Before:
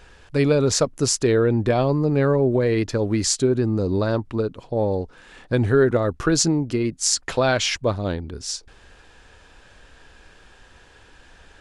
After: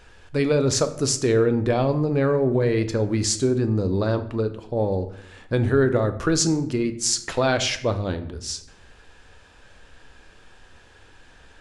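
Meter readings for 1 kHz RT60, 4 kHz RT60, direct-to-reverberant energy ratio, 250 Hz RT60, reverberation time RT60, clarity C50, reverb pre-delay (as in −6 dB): 0.65 s, 0.50 s, 9.0 dB, 0.95 s, 0.75 s, 13.0 dB, 9 ms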